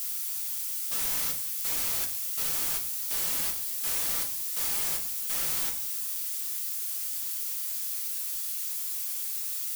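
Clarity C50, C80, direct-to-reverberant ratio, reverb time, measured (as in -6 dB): 10.5 dB, 14.5 dB, 0.0 dB, 0.55 s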